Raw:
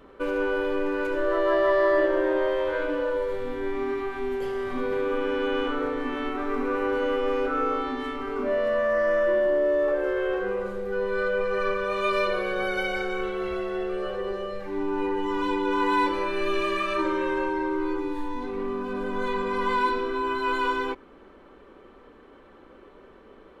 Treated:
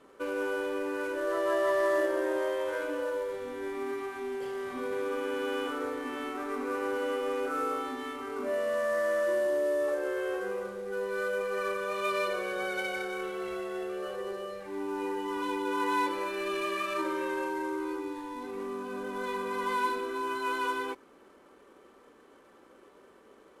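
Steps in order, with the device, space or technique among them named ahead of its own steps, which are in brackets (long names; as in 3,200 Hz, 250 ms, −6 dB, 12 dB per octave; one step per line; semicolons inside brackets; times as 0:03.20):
early wireless headset (high-pass filter 230 Hz 6 dB per octave; variable-slope delta modulation 64 kbit/s)
level −5 dB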